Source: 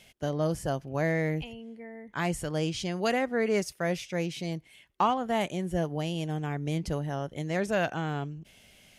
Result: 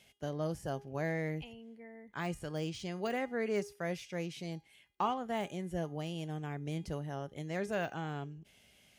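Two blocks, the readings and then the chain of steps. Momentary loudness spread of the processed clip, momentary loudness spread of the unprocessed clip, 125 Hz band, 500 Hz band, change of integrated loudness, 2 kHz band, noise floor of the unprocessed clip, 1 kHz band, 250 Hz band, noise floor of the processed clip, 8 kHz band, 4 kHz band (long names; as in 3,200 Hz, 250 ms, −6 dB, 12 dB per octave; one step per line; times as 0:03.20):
9 LU, 9 LU, −7.5 dB, −7.5 dB, −7.5 dB, −8.0 dB, −59 dBFS, −7.5 dB, −7.5 dB, −65 dBFS, −10.5 dB, −8.5 dB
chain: de-essing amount 95%
high-pass filter 41 Hz
tuned comb filter 410 Hz, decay 0.38 s, harmonics all, mix 60%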